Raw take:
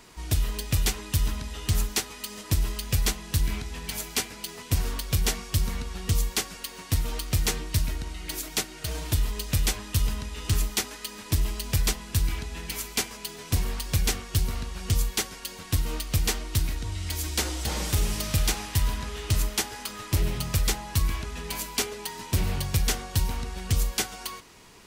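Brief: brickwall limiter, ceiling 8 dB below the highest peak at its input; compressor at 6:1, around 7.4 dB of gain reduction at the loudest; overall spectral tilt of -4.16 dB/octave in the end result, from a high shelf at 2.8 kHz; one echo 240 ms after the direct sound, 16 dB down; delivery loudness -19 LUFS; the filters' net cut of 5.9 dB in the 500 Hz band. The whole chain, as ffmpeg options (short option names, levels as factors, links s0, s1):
-af "equalizer=f=500:t=o:g=-7.5,highshelf=f=2800:g=-7,acompressor=threshold=0.0398:ratio=6,alimiter=level_in=1.33:limit=0.0631:level=0:latency=1,volume=0.75,aecho=1:1:240:0.158,volume=8.41"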